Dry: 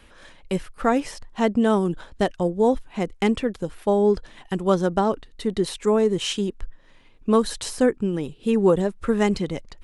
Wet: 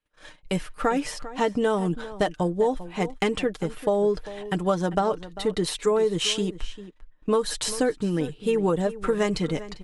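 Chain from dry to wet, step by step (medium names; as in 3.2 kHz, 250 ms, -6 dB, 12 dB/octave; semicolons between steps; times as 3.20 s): gate -46 dBFS, range -35 dB; bass shelf 330 Hz -4 dB; comb 6.6 ms, depth 52%; compression 5:1, threshold -21 dBFS, peak gain reduction 7.5 dB; echo from a far wall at 68 m, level -15 dB; trim +2 dB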